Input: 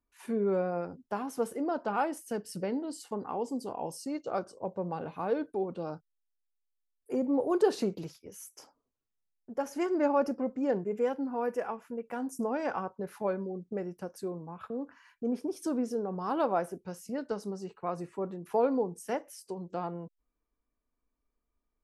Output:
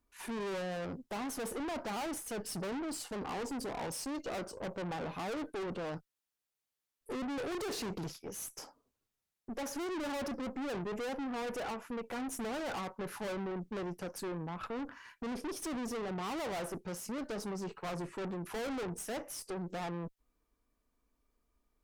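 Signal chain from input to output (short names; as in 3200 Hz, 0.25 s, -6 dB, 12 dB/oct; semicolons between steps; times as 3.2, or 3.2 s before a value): tube stage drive 45 dB, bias 0.55; gain +8.5 dB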